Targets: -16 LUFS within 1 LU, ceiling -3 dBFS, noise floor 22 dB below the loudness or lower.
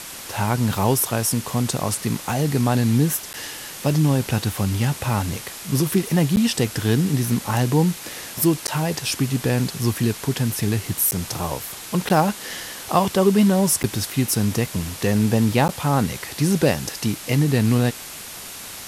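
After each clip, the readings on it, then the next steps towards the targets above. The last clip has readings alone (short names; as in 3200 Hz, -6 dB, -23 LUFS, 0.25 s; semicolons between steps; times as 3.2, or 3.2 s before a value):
dropouts 7; longest dropout 9.9 ms; noise floor -36 dBFS; noise floor target -44 dBFS; loudness -21.5 LUFS; peak -4.0 dBFS; loudness target -16.0 LUFS
-> interpolate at 3.33/6.36/8.67/11.11/12.09/13.83/15.68, 9.9 ms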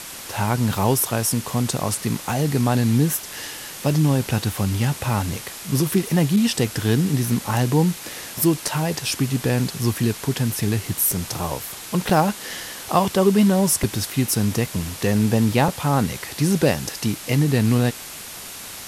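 dropouts 0; noise floor -36 dBFS; noise floor target -44 dBFS
-> noise print and reduce 8 dB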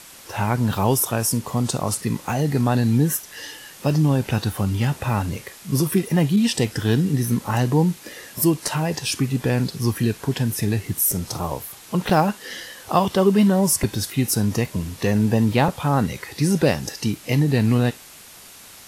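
noise floor -44 dBFS; loudness -21.5 LUFS; peak -4.0 dBFS; loudness target -16.0 LUFS
-> gain +5.5 dB; limiter -3 dBFS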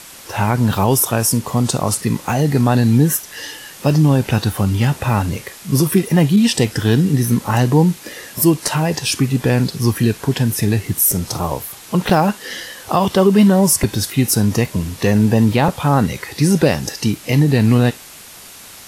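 loudness -16.0 LUFS; peak -3.0 dBFS; noise floor -38 dBFS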